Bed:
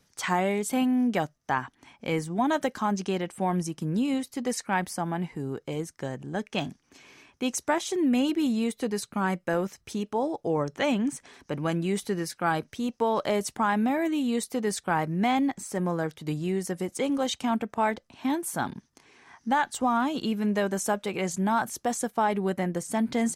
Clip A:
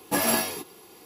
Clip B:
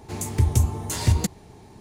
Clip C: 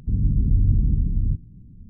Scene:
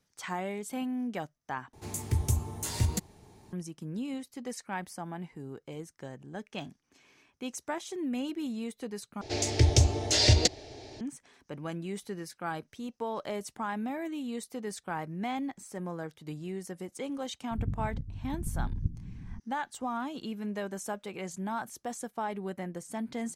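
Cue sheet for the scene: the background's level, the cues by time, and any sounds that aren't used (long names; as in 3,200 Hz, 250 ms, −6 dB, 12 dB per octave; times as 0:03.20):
bed −9.5 dB
0:01.73: overwrite with B −8.5 dB + high-shelf EQ 5,500 Hz +5 dB
0:09.21: overwrite with B −3 dB + drawn EQ curve 130 Hz 0 dB, 180 Hz −16 dB, 280 Hz +6 dB, 420 Hz +6 dB, 650 Hz +13 dB, 1,000 Hz −7 dB, 1,700 Hz +6 dB, 5,200 Hz +15 dB, 12,000 Hz −15 dB
0:17.51: mix in C −6.5 dB + compressor whose output falls as the input rises −25 dBFS, ratio −0.5
not used: A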